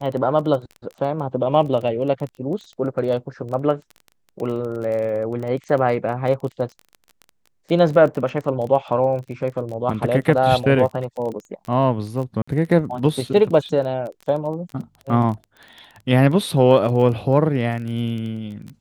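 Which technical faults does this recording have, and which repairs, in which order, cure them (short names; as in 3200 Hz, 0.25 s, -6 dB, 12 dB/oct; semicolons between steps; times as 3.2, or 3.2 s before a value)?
crackle 22/s -28 dBFS
12.42–12.47 gap 55 ms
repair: de-click; interpolate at 12.42, 55 ms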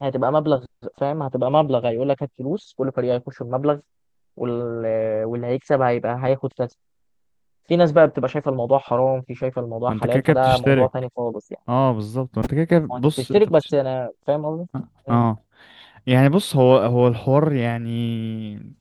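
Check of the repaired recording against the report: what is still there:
none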